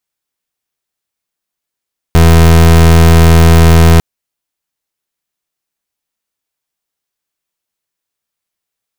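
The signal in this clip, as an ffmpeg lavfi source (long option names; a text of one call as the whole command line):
ffmpeg -f lavfi -i "aevalsrc='0.631*(2*lt(mod(82.4*t,1),0.29)-1)':duration=1.85:sample_rate=44100" out.wav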